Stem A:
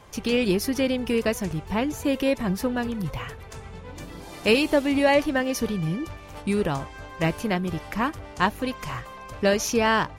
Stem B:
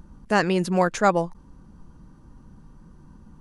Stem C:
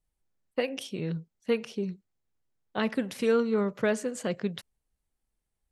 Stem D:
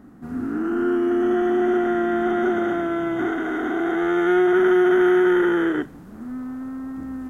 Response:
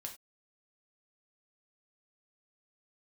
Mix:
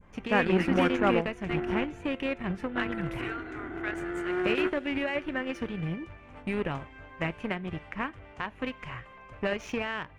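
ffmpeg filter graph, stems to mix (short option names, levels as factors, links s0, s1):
-filter_complex "[0:a]lowpass=f=9000:w=0.5412,lowpass=f=9000:w=1.3066,adynamicequalizer=threshold=0.00708:dfrequency=3000:dqfactor=1.4:tfrequency=3000:tqfactor=1.4:attack=5:release=100:ratio=0.375:range=3:mode=boostabove:tftype=bell,alimiter=limit=0.158:level=0:latency=1:release=181,volume=0.562,asplit=2[s0][s1];[s1]volume=0.316[s2];[1:a]highshelf=f=9800:g=-11.5,acontrast=80,volume=0.251[s3];[2:a]highpass=f=960:w=0.5412,highpass=f=960:w=1.3066,volume=1.06,asplit=2[s4][s5];[3:a]volume=0.266,asplit=2[s6][s7];[s7]volume=0.335[s8];[s5]apad=whole_len=321844[s9];[s6][s9]sidechaingate=range=0.0224:threshold=0.00224:ratio=16:detection=peak[s10];[4:a]atrim=start_sample=2205[s11];[s2][s8]amix=inputs=2:normalize=0[s12];[s12][s11]afir=irnorm=-1:irlink=0[s13];[s0][s3][s4][s10][s13]amix=inputs=5:normalize=0,adynamicequalizer=threshold=0.00562:dfrequency=950:dqfactor=1.1:tfrequency=950:tqfactor=1.1:attack=5:release=100:ratio=0.375:range=2.5:mode=cutabove:tftype=bell,aeval=exprs='0.237*(cos(1*acos(clip(val(0)/0.237,-1,1)))-cos(1*PI/2))+0.0299*(cos(5*acos(clip(val(0)/0.237,-1,1)))-cos(5*PI/2))+0.0376*(cos(7*acos(clip(val(0)/0.237,-1,1)))-cos(7*PI/2))':c=same,highshelf=f=3200:t=q:w=1.5:g=-12.5"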